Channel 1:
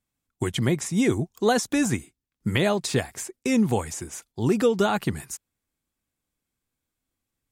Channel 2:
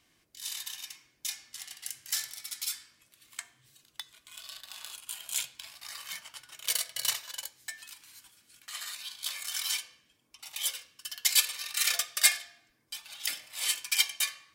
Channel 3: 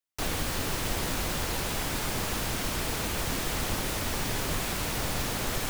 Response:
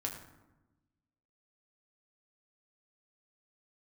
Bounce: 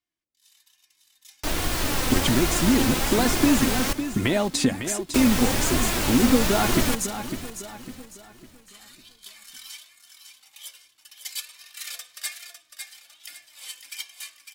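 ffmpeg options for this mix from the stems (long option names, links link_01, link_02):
-filter_complex "[0:a]equalizer=frequency=250:width_type=o:width=0.4:gain=8.5,acompressor=threshold=-25dB:ratio=6,adelay=1700,volume=-1dB,asplit=2[link_01][link_02];[link_02]volume=-9.5dB[link_03];[1:a]volume=-18.5dB,asplit=2[link_04][link_05];[link_05]volume=-7dB[link_06];[2:a]adelay=1250,volume=-1.5dB,asplit=3[link_07][link_08][link_09];[link_07]atrim=end=3.93,asetpts=PTS-STARTPTS,afade=type=out:start_time=3.926:duration=0.004:curve=hsin[link_10];[link_08]atrim=start=3.93:end=5.14,asetpts=PTS-STARTPTS,volume=0[link_11];[link_09]atrim=start=5.14,asetpts=PTS-STARTPTS,afade=type=in:duration=0.004:curve=hsin[link_12];[link_10][link_11][link_12]concat=n=3:v=0:a=1,asplit=2[link_13][link_14];[link_14]volume=-14.5dB[link_15];[link_03][link_06][link_15]amix=inputs=3:normalize=0,aecho=0:1:553|1106|1659|2212|2765:1|0.36|0.13|0.0467|0.0168[link_16];[link_01][link_04][link_13][link_16]amix=inputs=4:normalize=0,dynaudnorm=framelen=370:gausssize=7:maxgain=13dB,flanger=delay=2.8:depth=1.1:regen=48:speed=1.2:shape=sinusoidal"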